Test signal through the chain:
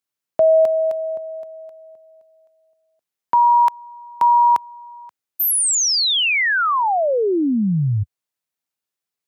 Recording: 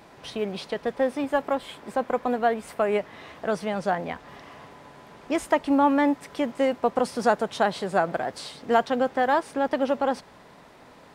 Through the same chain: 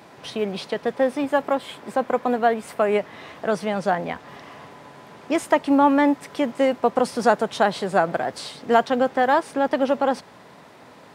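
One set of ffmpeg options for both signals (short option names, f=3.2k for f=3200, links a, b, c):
-af "highpass=f=85:w=0.5412,highpass=f=85:w=1.3066,volume=3.5dB"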